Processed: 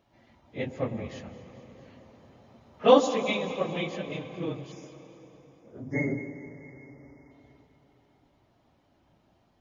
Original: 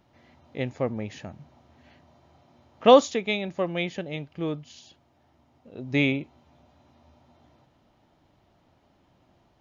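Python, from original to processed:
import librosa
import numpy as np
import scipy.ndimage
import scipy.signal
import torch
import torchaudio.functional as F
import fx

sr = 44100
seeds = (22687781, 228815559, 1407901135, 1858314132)

y = fx.phase_scramble(x, sr, seeds[0], window_ms=50)
y = fx.spec_erase(y, sr, start_s=4.72, length_s=2.59, low_hz=2200.0, high_hz=4800.0)
y = fx.echo_alternate(y, sr, ms=109, hz=880.0, feedback_pct=78, wet_db=-13.5)
y = fx.rev_plate(y, sr, seeds[1], rt60_s=3.9, hf_ratio=0.65, predelay_ms=115, drr_db=11.5)
y = fx.band_squash(y, sr, depth_pct=40, at=(1.2, 2.84))
y = F.gain(torch.from_numpy(y), -3.5).numpy()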